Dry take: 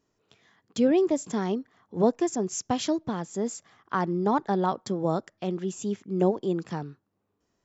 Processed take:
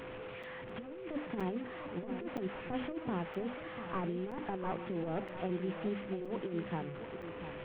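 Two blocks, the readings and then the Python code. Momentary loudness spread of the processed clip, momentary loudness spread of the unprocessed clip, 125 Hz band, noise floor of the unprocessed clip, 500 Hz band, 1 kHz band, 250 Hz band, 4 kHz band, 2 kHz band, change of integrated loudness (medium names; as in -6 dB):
8 LU, 9 LU, -9.0 dB, -77 dBFS, -11.5 dB, -11.5 dB, -11.5 dB, -11.0 dB, -4.0 dB, -12.0 dB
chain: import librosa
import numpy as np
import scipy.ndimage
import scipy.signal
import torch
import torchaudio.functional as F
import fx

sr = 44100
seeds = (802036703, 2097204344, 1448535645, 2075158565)

y = fx.delta_mod(x, sr, bps=16000, step_db=-36.5)
y = fx.hum_notches(y, sr, base_hz=50, count=6)
y = fx.over_compress(y, sr, threshold_db=-29.0, ratio=-0.5)
y = y + 10.0 ** (-10.0 / 20.0) * np.pad(y, (int(695 * sr / 1000.0), 0))[:len(y)]
y = y + 10.0 ** (-39.0 / 20.0) * np.sin(2.0 * np.pi * 510.0 * np.arange(len(y)) / sr)
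y = fx.buffer_crackle(y, sr, first_s=0.43, period_s=0.97, block=256, kind='zero')
y = y * 10.0 ** (-7.5 / 20.0)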